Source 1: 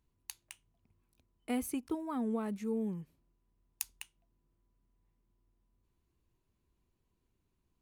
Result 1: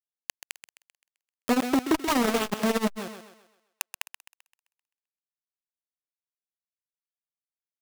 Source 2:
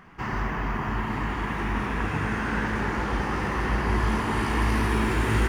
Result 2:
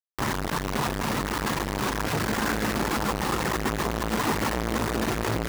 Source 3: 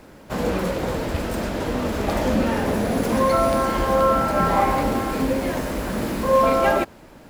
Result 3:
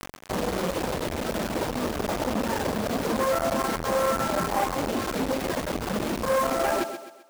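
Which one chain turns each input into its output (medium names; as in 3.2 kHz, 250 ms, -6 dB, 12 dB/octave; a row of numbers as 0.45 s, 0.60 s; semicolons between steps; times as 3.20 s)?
low-pass 1.4 kHz 6 dB/octave; reverb removal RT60 1.1 s; bass shelf 150 Hz -3.5 dB; in parallel at -2 dB: peak limiter -20 dBFS; on the sum: compression 2:1, threshold -33 dBFS; bit crusher 6-bit; on a send: thinning echo 130 ms, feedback 42%, high-pass 200 Hz, level -11 dB; on the sum: transformer saturation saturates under 820 Hz; normalise loudness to -27 LUFS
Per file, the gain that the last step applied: +14.0 dB, +9.0 dB, +5.5 dB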